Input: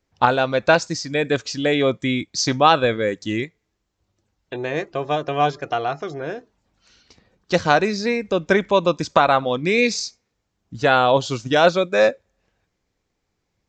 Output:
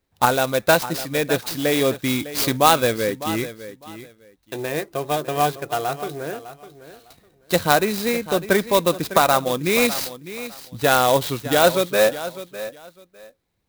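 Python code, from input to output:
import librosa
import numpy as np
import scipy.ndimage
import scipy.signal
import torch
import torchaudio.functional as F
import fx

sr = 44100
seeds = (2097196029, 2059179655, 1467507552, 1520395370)

p1 = fx.peak_eq(x, sr, hz=3900.0, db=9.5, octaves=0.23)
p2 = p1 + fx.echo_feedback(p1, sr, ms=604, feedback_pct=20, wet_db=-14.0, dry=0)
p3 = fx.clock_jitter(p2, sr, seeds[0], jitter_ms=0.039)
y = p3 * 10.0 ** (-1.0 / 20.0)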